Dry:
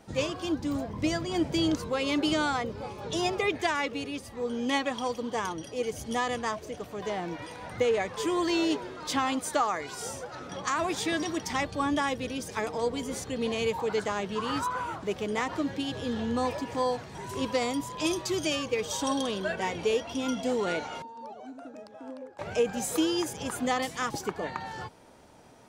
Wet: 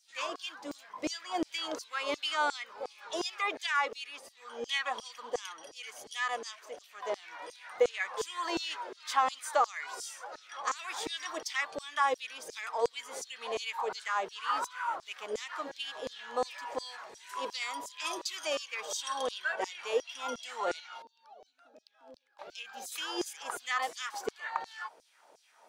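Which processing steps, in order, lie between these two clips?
dynamic bell 1.2 kHz, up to +5 dB, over -44 dBFS, Q 1.2; LFO high-pass saw down 2.8 Hz 390–5900 Hz; 20.80–22.92 s: graphic EQ 125/500/1000/2000/4000/8000 Hz -6/-7/-7/-7/+4/-10 dB; trim -6 dB

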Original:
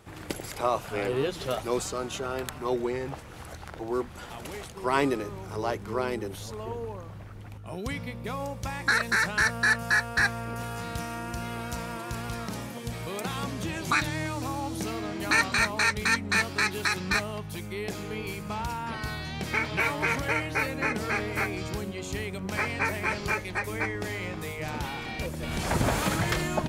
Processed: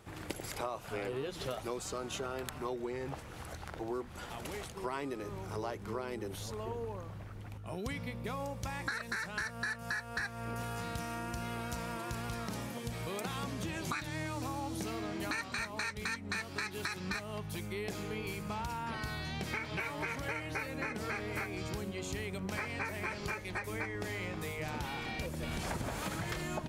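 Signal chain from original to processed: compression 10:1, threshold -31 dBFS, peak gain reduction 13 dB; trim -3 dB

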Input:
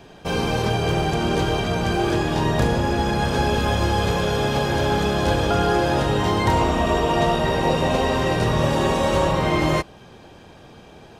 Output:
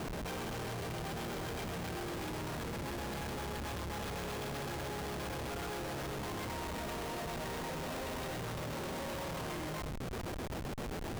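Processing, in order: hum notches 50/100/150/200 Hz; compression 8:1, threshold -33 dBFS, peak gain reduction 17.5 dB; square tremolo 7.7 Hz, depth 65%, duty 65%; band-passed feedback delay 91 ms, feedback 52%, band-pass 1.8 kHz, level -12 dB; Schmitt trigger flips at -47 dBFS; trim -2 dB

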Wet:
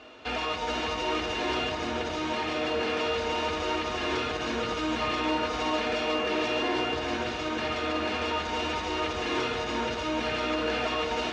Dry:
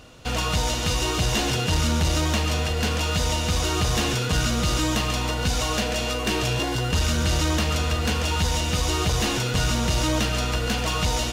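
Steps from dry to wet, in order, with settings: peaking EQ 130 Hz -6 dB 1.1 oct; compressor with a negative ratio -26 dBFS, ratio -1; overdrive pedal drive 14 dB, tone 2 kHz, clips at -14 dBFS; band-pass 100–4400 Hz; echo whose repeats swap between lows and highs 415 ms, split 1.9 kHz, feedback 61%, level -3 dB; reverberation RT60 1.1 s, pre-delay 3 ms, DRR 1.5 dB; trim -8 dB

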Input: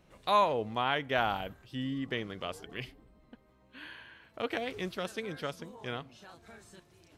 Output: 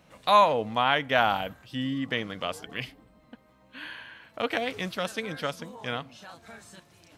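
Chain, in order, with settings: high-pass 140 Hz 6 dB/octave; peaking EQ 380 Hz -11.5 dB 0.26 oct; trim +7 dB

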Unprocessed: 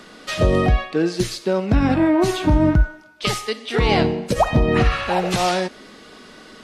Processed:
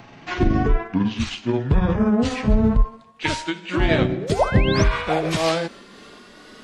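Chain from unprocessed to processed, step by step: pitch bend over the whole clip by -10 st ending unshifted; painted sound rise, 4.11–4.84 s, 250–6400 Hz -31 dBFS

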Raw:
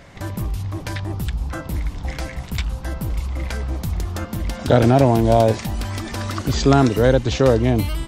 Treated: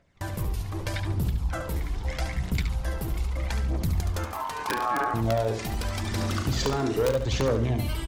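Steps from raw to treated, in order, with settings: gate with hold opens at -21 dBFS; hum notches 50/100/150/200/250/300 Hz; compression 4:1, threshold -19 dBFS, peak gain reduction 9.5 dB; integer overflow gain 10.5 dB; phaser 0.8 Hz, delay 3 ms, feedback 48%; saturation -14.5 dBFS, distortion -16 dB; 4.25–5.14 s: ring modulator 980 Hz; 6.01–7.12 s: doubling 38 ms -9 dB; feedback delay 71 ms, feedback 31%, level -8 dB; trim -3.5 dB

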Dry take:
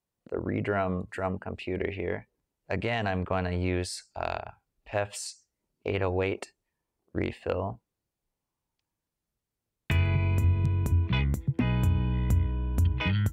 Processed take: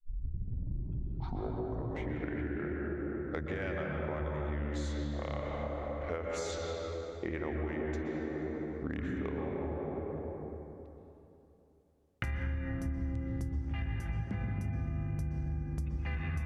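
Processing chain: tape start-up on the opening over 1.68 s; feedback echo behind a low-pass 221 ms, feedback 48%, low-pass 620 Hz, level -5 dB; tape speed -19%; reverberation RT60 3.0 s, pre-delay 113 ms, DRR -1.5 dB; compression 6:1, threshold -31 dBFS, peak gain reduction 15.5 dB; trim -2 dB

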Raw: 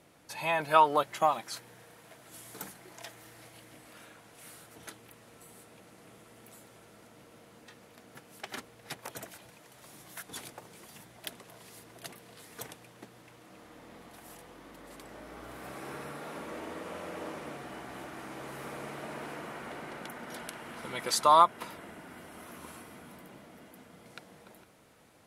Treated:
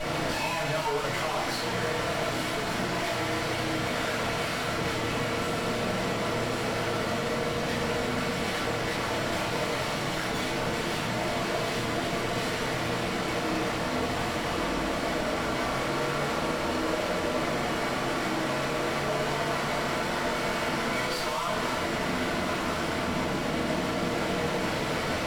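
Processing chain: one-bit comparator; low-pass 3.4 kHz 12 dB/octave; bass shelf 130 Hz -10.5 dB; peak limiter -39.5 dBFS, peak gain reduction 6.5 dB; one-sided clip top -59.5 dBFS, bottom -45 dBFS; reverberation RT60 0.85 s, pre-delay 3 ms, DRR -10 dB; trim +7.5 dB

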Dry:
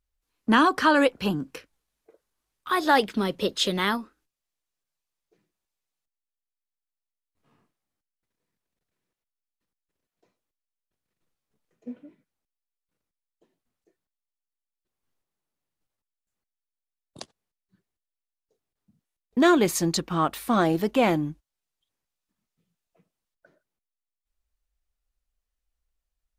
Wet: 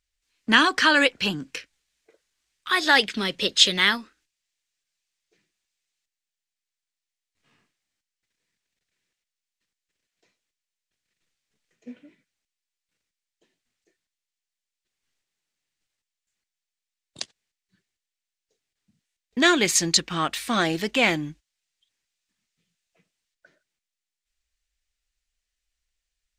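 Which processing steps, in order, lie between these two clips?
high-order bell 3.7 kHz +12.5 dB 2.7 oct; trim -3 dB

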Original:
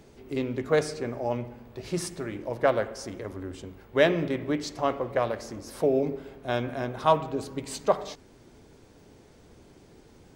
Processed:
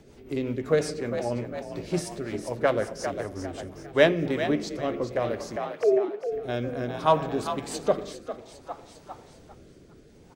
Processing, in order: 5.56–6.32 s: formants replaced by sine waves; frequency-shifting echo 402 ms, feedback 49%, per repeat +50 Hz, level -9 dB; rotary cabinet horn 5.5 Hz, later 0.6 Hz, at 3.64 s; trim +2.5 dB

